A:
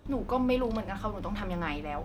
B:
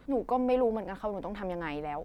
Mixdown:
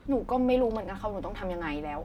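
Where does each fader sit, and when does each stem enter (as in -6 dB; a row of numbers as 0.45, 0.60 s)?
-5.0, +0.5 dB; 0.00, 0.00 s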